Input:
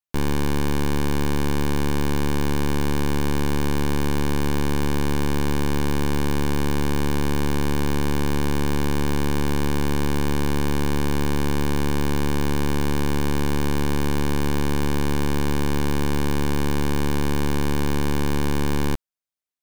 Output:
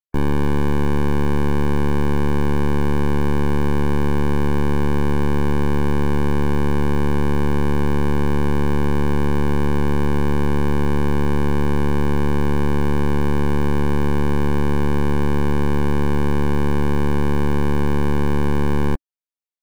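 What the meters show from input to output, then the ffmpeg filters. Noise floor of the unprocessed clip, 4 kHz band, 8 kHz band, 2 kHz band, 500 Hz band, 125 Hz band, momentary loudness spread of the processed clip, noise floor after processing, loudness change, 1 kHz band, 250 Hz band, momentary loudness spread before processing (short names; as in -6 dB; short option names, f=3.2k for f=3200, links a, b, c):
-19 dBFS, -5.0 dB, -8.0 dB, +1.0 dB, +4.0 dB, +4.5 dB, 0 LU, -15 dBFS, +3.5 dB, +3.5 dB, +3.5 dB, 0 LU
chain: -filter_complex "[0:a]afftdn=nr=14:nf=-32,adynamicequalizer=threshold=0.00891:dfrequency=290:dqfactor=5.9:tfrequency=290:tqfactor=5.9:attack=5:release=100:ratio=0.375:range=2:mode=cutabove:tftype=bell,asplit=2[a][b];[b]acrusher=bits=4:mode=log:mix=0:aa=0.000001,volume=-7.5dB[c];[a][c]amix=inputs=2:normalize=0,volume=1.5dB"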